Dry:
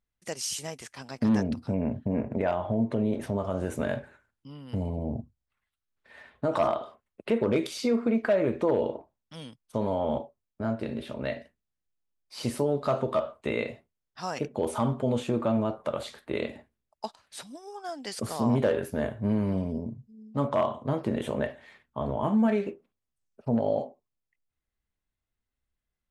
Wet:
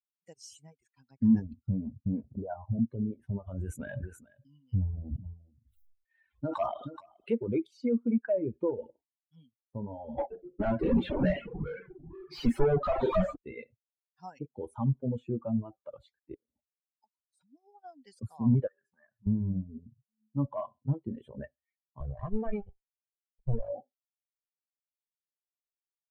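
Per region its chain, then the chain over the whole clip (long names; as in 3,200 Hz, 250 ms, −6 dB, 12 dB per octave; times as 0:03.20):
0:02.36–0:02.79: linear-phase brick-wall low-pass 1,600 Hz + all-pass dispersion highs, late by 42 ms, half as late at 470 Hz
0:03.46–0:07.35: high-shelf EQ 2,400 Hz +11 dB + single-tap delay 426 ms −12.5 dB + level that may fall only so fast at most 28 dB per second
0:10.18–0:13.36: double-tracking delay 34 ms −14 dB + mid-hump overdrive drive 34 dB, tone 2,100 Hz, clips at −14.5 dBFS + delay with pitch and tempo change per echo 123 ms, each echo −4 semitones, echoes 2, each echo −6 dB
0:16.34–0:17.41: downward compressor 10 to 1, threshold −41 dBFS + Butterworth band-reject 2,400 Hz, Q 0.9
0:18.67–0:19.27: downward compressor, threshold −32 dBFS + loudspeaker in its box 230–8,600 Hz, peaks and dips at 280 Hz −9 dB, 440 Hz −8 dB, 1,200 Hz +8 dB, 1,800 Hz +7 dB, 3,300 Hz −6 dB, 4,900 Hz +6 dB
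0:22.00–0:23.73: lower of the sound and its delayed copy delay 1.7 ms + high-shelf EQ 7,700 Hz +5.5 dB
whole clip: spectral dynamics exaggerated over time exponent 2; reverb reduction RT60 0.7 s; spectral tilt −3.5 dB per octave; level −4.5 dB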